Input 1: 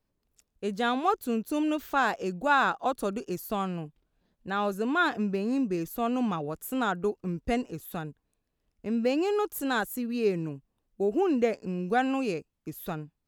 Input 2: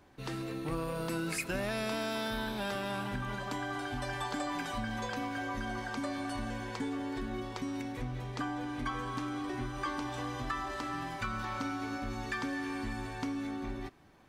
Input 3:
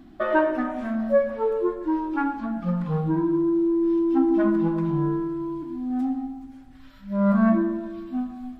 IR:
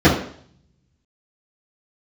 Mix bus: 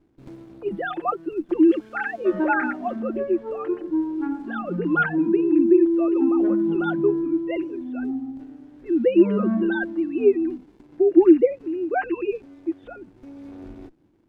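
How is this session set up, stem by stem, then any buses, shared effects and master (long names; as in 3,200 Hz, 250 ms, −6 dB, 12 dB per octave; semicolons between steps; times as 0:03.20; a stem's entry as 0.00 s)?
−3.0 dB, 0.00 s, no send, three sine waves on the formant tracks; parametric band 1,700 Hz +8 dB 0.44 octaves; comb filter 5.7 ms
−3.5 dB, 0.00 s, no send, windowed peak hold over 65 samples; automatic ducking −12 dB, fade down 1.00 s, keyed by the first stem
−12.5 dB, 2.05 s, no send, low shelf with overshoot 140 Hz −8 dB, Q 3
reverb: not used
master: parametric band 320 Hz +12.5 dB 0.73 octaves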